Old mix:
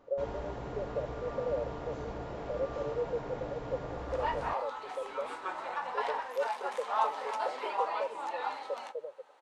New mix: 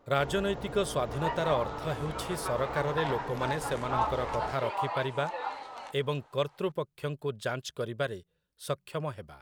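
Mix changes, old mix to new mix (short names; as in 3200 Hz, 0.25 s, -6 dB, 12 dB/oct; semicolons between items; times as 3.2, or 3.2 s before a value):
speech: remove Butterworth band-pass 510 Hz, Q 4.3; second sound: entry -3.00 s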